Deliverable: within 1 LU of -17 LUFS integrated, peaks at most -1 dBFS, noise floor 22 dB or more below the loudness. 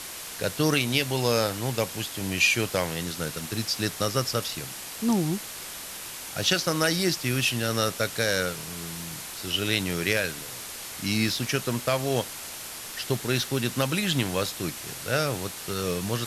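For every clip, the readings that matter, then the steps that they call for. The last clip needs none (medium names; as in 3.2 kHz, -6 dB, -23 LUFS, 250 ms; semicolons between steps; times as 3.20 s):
noise floor -39 dBFS; noise floor target -49 dBFS; loudness -27.0 LUFS; peak level -8.0 dBFS; loudness target -17.0 LUFS
-> noise reduction 10 dB, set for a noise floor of -39 dBFS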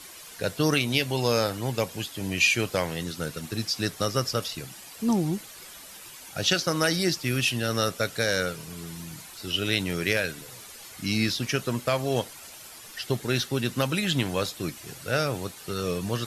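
noise floor -45 dBFS; noise floor target -49 dBFS
-> noise reduction 6 dB, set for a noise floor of -45 dBFS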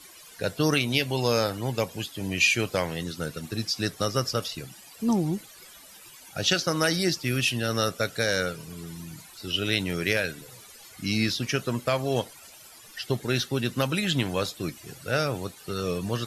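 noise floor -49 dBFS; loudness -27.0 LUFS; peak level -9.0 dBFS; loudness target -17.0 LUFS
-> trim +10 dB; peak limiter -1 dBFS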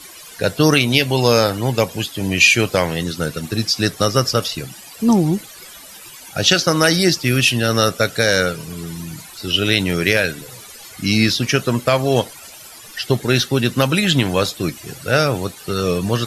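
loudness -17.0 LUFS; peak level -1.0 dBFS; noise floor -39 dBFS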